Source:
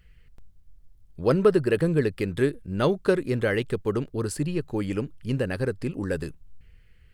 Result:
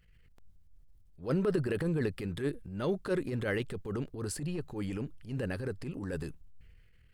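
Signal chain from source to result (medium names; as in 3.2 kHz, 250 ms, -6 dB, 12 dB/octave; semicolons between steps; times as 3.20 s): transient shaper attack -11 dB, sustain +4 dB; trim -6.5 dB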